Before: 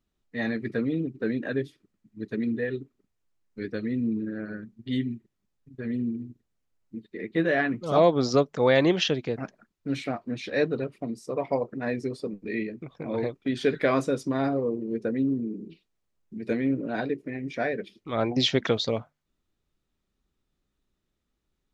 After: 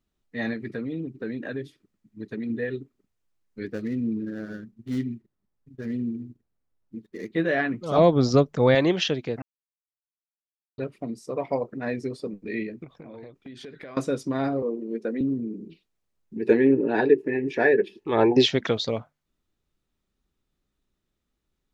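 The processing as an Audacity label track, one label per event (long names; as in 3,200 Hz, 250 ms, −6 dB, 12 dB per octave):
0.530000	2.500000	downward compressor 2 to 1, threshold −30 dBFS
3.660000	7.290000	running median over 15 samples
7.980000	8.750000	low-shelf EQ 200 Hz +11.5 dB
9.420000	10.780000	silence
12.840000	13.970000	downward compressor 5 to 1, threshold −40 dBFS
14.620000	15.210000	high-pass filter 210 Hz 24 dB per octave
16.360000	18.460000	hollow resonant body resonances 400/870/1,700/2,600 Hz, height 16 dB, ringing for 30 ms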